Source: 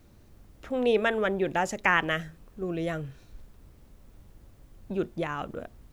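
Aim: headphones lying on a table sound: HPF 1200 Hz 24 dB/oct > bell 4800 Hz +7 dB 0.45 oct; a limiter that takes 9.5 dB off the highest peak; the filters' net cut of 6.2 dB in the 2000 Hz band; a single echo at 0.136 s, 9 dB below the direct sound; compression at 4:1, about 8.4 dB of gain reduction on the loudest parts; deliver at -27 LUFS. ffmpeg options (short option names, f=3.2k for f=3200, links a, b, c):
-af "equalizer=f=2k:t=o:g=-7.5,acompressor=threshold=-30dB:ratio=4,alimiter=level_in=3.5dB:limit=-24dB:level=0:latency=1,volume=-3.5dB,highpass=f=1.2k:w=0.5412,highpass=f=1.2k:w=1.3066,equalizer=f=4.8k:t=o:w=0.45:g=7,aecho=1:1:136:0.355,volume=19.5dB"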